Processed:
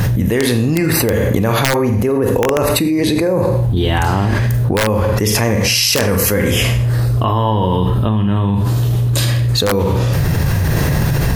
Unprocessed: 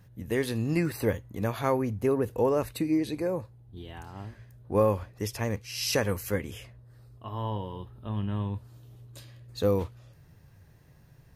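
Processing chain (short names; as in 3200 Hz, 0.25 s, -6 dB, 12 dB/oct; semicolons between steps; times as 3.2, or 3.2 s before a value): Schroeder reverb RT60 0.45 s, combs from 33 ms, DRR 7 dB; wrapped overs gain 15 dB; fast leveller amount 100%; gain +5 dB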